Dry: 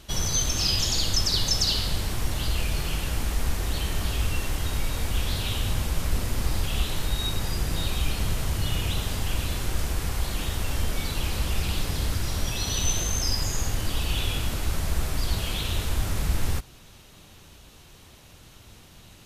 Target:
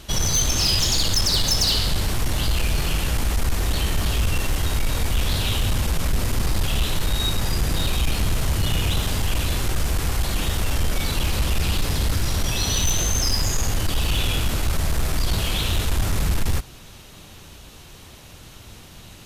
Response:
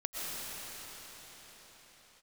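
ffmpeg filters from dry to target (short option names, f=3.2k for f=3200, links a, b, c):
-af "aeval=exprs='0.316*(cos(1*acos(clip(val(0)/0.316,-1,1)))-cos(1*PI/2))+0.0891*(cos(5*acos(clip(val(0)/0.316,-1,1)))-cos(5*PI/2))':c=same,volume=-1dB"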